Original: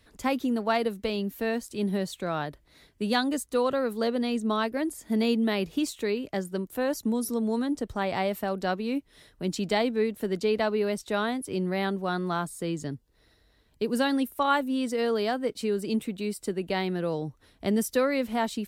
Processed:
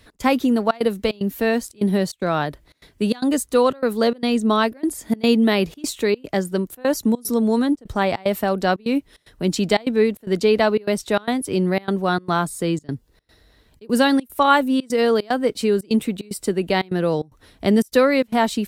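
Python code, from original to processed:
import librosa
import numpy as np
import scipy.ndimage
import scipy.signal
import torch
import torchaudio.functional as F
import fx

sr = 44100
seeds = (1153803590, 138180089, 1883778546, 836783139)

y = fx.step_gate(x, sr, bpm=149, pattern='x.xxxxx.xx', floor_db=-24.0, edge_ms=4.5)
y = y * 10.0 ** (9.0 / 20.0)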